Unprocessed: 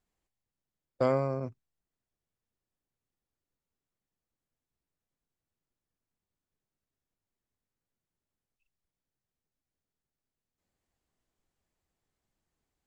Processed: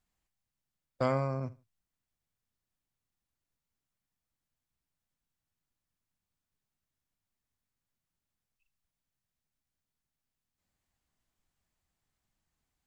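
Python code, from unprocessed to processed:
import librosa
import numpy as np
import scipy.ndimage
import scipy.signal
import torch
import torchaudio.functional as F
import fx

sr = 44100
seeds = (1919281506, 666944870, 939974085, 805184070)

y = fx.peak_eq(x, sr, hz=420.0, db=-8.0, octaves=1.2)
y = fx.echo_feedback(y, sr, ms=75, feedback_pct=23, wet_db=-20)
y = y * librosa.db_to_amplitude(1.5)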